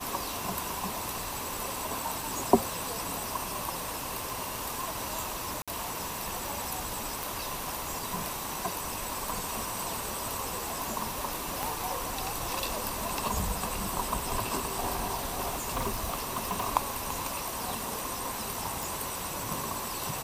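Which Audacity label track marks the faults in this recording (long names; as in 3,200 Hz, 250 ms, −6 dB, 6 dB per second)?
4.300000	4.300000	click
5.620000	5.680000	drop-out 56 ms
7.230000	7.230000	click
11.630000	11.630000	click
15.500000	16.670000	clipping −26 dBFS
18.830000	18.830000	click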